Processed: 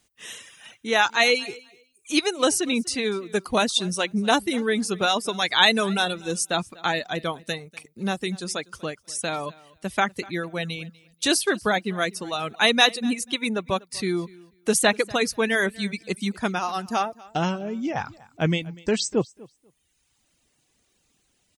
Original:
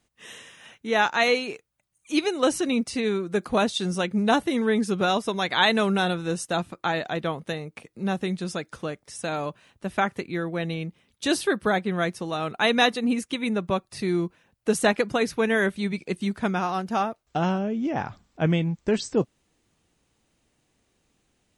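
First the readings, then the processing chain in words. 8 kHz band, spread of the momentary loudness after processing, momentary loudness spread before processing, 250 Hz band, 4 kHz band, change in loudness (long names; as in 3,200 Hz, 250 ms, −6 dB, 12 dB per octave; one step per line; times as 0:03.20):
+8.0 dB, 13 LU, 12 LU, −1.5 dB, +5.5 dB, +1.5 dB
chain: reverb reduction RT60 1.1 s
high-shelf EQ 2,600 Hz +9.5 dB
on a send: repeating echo 244 ms, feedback 17%, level −22.5 dB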